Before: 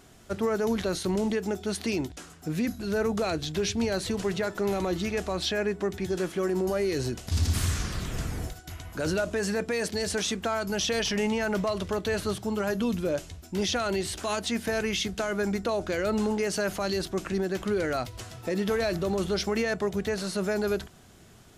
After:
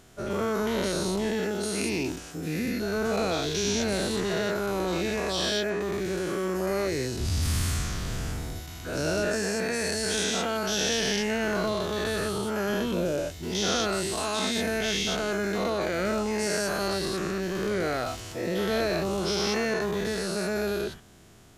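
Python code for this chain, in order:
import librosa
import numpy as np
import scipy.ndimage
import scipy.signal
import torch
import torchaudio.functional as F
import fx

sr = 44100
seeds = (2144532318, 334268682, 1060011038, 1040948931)

y = fx.spec_dilate(x, sr, span_ms=240)
y = y * 10.0 ** (-5.5 / 20.0)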